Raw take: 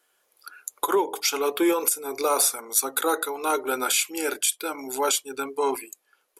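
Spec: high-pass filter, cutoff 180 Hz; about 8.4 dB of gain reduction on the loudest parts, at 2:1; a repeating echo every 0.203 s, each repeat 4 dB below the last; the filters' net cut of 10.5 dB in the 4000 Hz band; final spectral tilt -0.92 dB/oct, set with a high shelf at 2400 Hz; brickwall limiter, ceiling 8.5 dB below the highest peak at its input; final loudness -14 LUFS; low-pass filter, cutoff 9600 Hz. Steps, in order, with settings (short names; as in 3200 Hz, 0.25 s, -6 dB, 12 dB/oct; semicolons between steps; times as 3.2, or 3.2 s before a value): HPF 180 Hz; LPF 9600 Hz; high shelf 2400 Hz -5.5 dB; bell 4000 Hz -8.5 dB; compressor 2:1, threshold -34 dBFS; limiter -27 dBFS; feedback echo 0.203 s, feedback 63%, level -4 dB; gain +21 dB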